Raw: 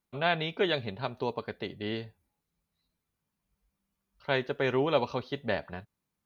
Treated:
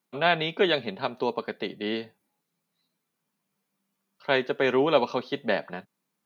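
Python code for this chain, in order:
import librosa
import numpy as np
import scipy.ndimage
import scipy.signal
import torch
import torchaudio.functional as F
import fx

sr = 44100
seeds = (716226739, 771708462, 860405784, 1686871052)

y = scipy.signal.sosfilt(scipy.signal.butter(4, 170.0, 'highpass', fs=sr, output='sos'), x)
y = y * 10.0 ** (5.0 / 20.0)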